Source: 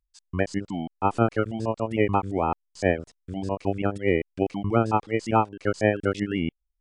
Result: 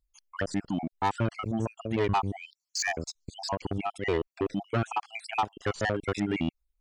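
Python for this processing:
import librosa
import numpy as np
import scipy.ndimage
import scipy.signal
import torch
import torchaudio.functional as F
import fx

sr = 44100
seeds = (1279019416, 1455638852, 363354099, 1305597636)

y = fx.spec_dropout(x, sr, seeds[0], share_pct=50)
y = fx.band_shelf(y, sr, hz=5300.0, db=15.0, octaves=1.2, at=(2.43, 3.5), fade=0.02)
y = 10.0 ** (-24.0 / 20.0) * np.tanh(y / 10.0 ** (-24.0 / 20.0))
y = y * librosa.db_to_amplitude(3.0)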